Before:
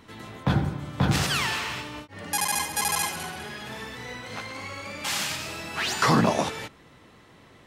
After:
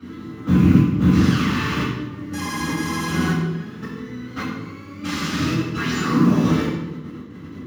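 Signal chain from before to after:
loose part that buzzes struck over −28 dBFS, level −22 dBFS
high-pass filter 140 Hz 12 dB per octave
output level in coarse steps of 18 dB
noise that follows the level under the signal 12 dB
convolution reverb RT60 1.1 s, pre-delay 3 ms, DRR −14 dB
level −9 dB

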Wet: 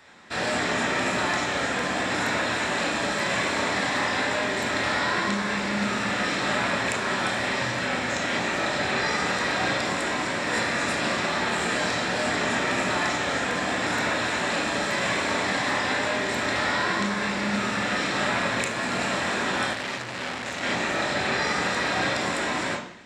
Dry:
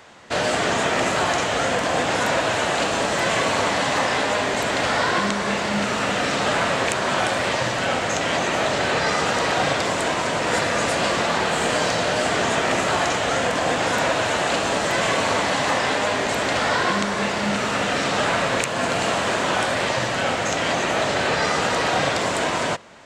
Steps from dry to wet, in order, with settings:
convolution reverb RT60 0.70 s, pre-delay 21 ms, DRR −1 dB
0:19.73–0:20.63: saturating transformer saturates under 4,000 Hz
level −8 dB

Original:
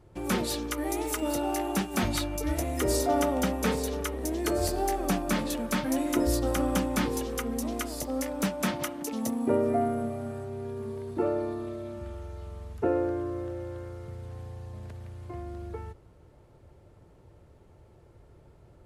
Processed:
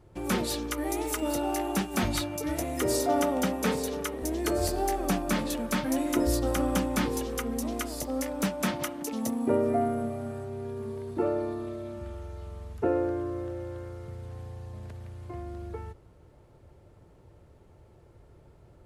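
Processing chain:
0:02.21–0:04.22: high-pass filter 83 Hz 24 dB per octave

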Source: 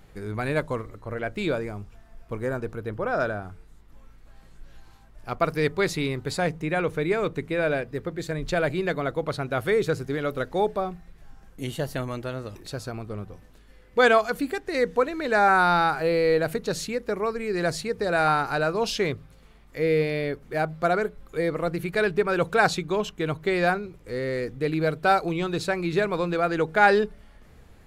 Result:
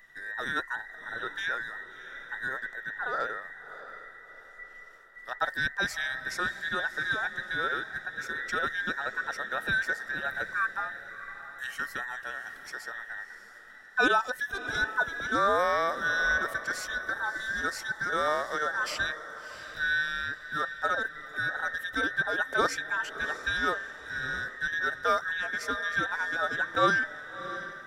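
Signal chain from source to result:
frequency inversion band by band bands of 2,000 Hz
feedback delay with all-pass diffusion 668 ms, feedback 42%, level −12.5 dB
level −6 dB

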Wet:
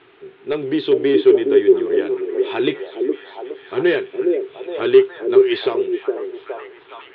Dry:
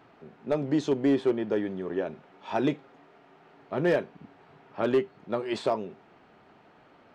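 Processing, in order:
drawn EQ curve 130 Hz 0 dB, 220 Hz −9 dB, 390 Hz +15 dB, 580 Hz −3 dB, 1,100 Hz +4 dB, 1,700 Hz +9 dB, 3,600 Hz +15 dB, 6,700 Hz −27 dB
on a send: echo through a band-pass that steps 415 ms, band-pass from 400 Hz, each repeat 0.7 octaves, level −1 dB

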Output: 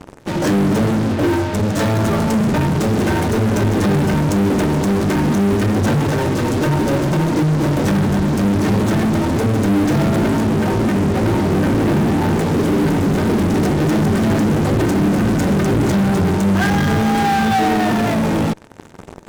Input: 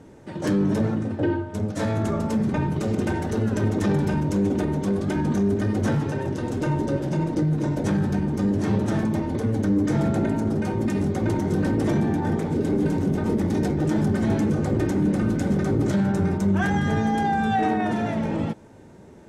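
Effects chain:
0:10.45–0:12.33: low-pass filter 2,100 Hz
in parallel at −6 dB: fuzz pedal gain 42 dB, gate −42 dBFS

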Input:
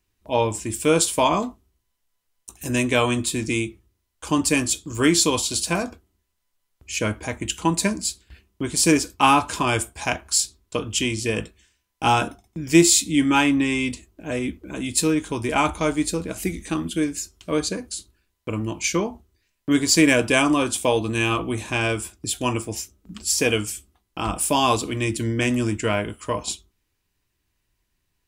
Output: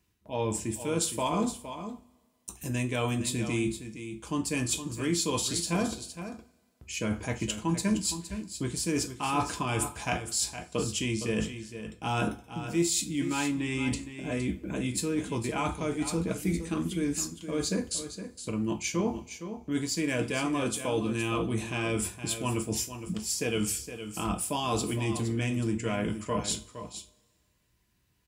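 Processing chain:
high-pass filter 72 Hz
low-shelf EQ 220 Hz +8 dB
reversed playback
downward compressor 6 to 1, threshold −28 dBFS, peak gain reduction 20 dB
reversed playback
single-tap delay 464 ms −10.5 dB
convolution reverb, pre-delay 3 ms, DRR 7 dB

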